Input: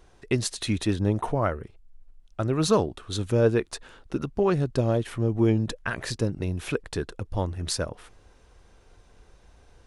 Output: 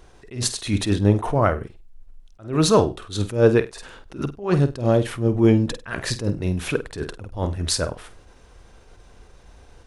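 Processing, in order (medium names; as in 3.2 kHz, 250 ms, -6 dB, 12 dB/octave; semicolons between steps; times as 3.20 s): flutter echo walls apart 8.4 m, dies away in 0.24 s; attacks held to a fixed rise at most 160 dB/s; trim +6.5 dB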